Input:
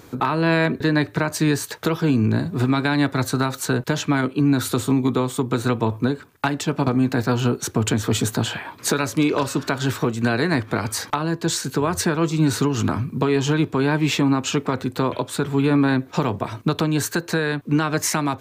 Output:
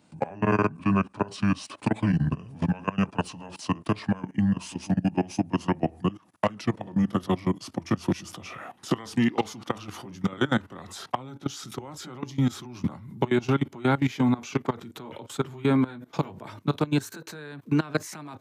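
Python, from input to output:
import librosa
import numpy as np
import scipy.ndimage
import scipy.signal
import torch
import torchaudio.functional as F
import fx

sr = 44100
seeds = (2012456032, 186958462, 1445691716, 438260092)

y = fx.pitch_glide(x, sr, semitones=-8.0, runs='ending unshifted')
y = fx.level_steps(y, sr, step_db=20)
y = scipy.signal.sosfilt(scipy.signal.butter(4, 110.0, 'highpass', fs=sr, output='sos'), y)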